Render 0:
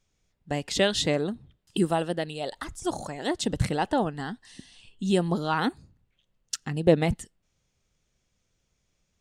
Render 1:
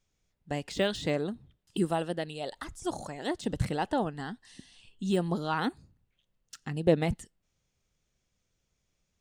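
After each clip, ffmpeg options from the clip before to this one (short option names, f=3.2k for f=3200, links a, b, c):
-af "deesser=0.75,volume=-4dB"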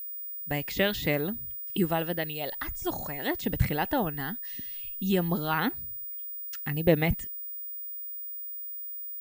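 -af "equalizer=f=2.1k:t=o:w=0.9:g=8.5,aeval=exprs='val(0)+0.0178*sin(2*PI*15000*n/s)':c=same,lowshelf=f=130:g=7.5"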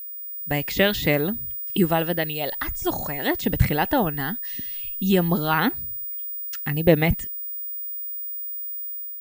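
-af "dynaudnorm=f=150:g=5:m=4dB,volume=2.5dB"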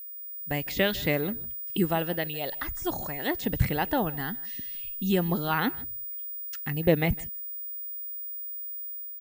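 -af "aecho=1:1:155:0.0794,volume=-5.5dB"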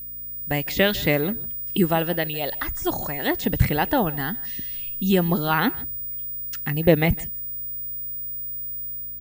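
-af "aeval=exprs='val(0)+0.00158*(sin(2*PI*60*n/s)+sin(2*PI*2*60*n/s)/2+sin(2*PI*3*60*n/s)/3+sin(2*PI*4*60*n/s)/4+sin(2*PI*5*60*n/s)/5)':c=same,volume=5.5dB"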